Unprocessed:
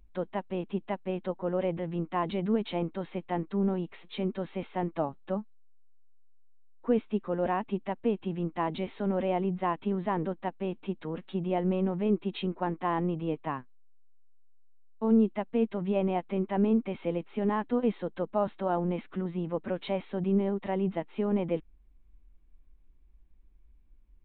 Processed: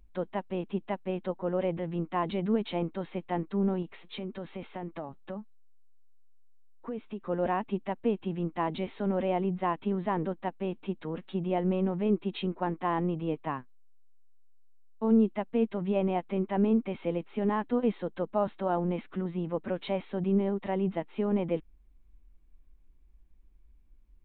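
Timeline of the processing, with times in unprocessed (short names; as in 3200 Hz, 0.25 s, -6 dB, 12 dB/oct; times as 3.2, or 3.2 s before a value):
3.82–7.27 compressor 4:1, threshold -34 dBFS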